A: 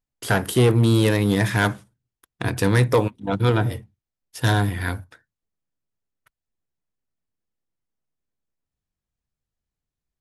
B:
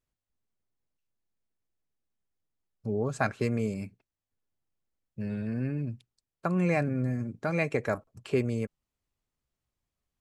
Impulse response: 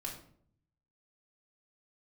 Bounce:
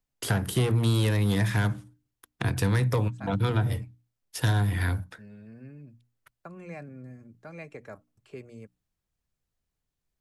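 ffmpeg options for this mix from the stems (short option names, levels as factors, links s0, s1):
-filter_complex "[0:a]volume=1.33,asplit=2[s0][s1];[1:a]agate=range=0.0224:threshold=0.00562:ratio=3:detection=peak,volume=0.2[s2];[s1]apad=whole_len=450213[s3];[s2][s3]sidechaincompress=threshold=0.141:ratio=8:attack=16:release=360[s4];[s0][s4]amix=inputs=2:normalize=0,bandreject=f=60:t=h:w=6,bandreject=f=120:t=h:w=6,bandreject=f=180:t=h:w=6,bandreject=f=240:t=h:w=6,bandreject=f=300:t=h:w=6,acrossover=split=200|490[s5][s6][s7];[s5]acompressor=threshold=0.0794:ratio=4[s8];[s6]acompressor=threshold=0.00794:ratio=4[s9];[s7]acompressor=threshold=0.0251:ratio=4[s10];[s8][s9][s10]amix=inputs=3:normalize=0"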